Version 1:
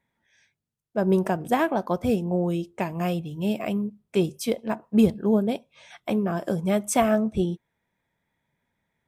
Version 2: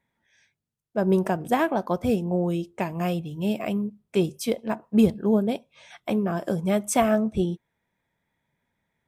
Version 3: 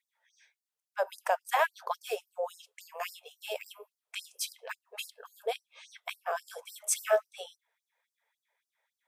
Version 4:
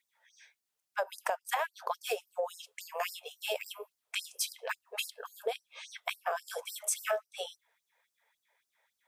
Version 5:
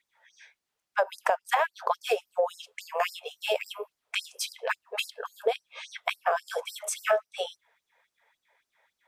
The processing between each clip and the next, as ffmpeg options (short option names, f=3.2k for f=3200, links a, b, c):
-af anull
-af "afftfilt=real='re*gte(b*sr/1024,400*pow(4500/400,0.5+0.5*sin(2*PI*3.6*pts/sr)))':imag='im*gte(b*sr/1024,400*pow(4500/400,0.5+0.5*sin(2*PI*3.6*pts/sr)))':win_size=1024:overlap=0.75"
-af "acompressor=threshold=-35dB:ratio=6,volume=5.5dB"
-af "lowpass=f=2.9k:p=1,volume=8dB"